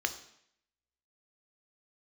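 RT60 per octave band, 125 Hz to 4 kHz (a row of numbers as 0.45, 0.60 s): 0.70, 0.70, 0.70, 0.70, 0.75, 0.70 s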